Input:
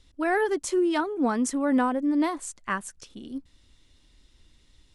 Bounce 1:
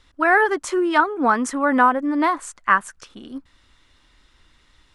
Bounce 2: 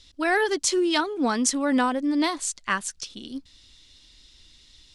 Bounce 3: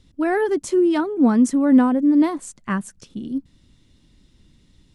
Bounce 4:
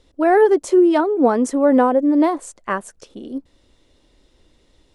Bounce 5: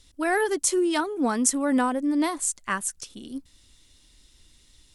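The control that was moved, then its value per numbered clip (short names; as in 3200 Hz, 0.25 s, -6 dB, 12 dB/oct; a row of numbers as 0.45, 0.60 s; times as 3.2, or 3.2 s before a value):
bell, frequency: 1300, 4500, 170, 520, 14000 Hz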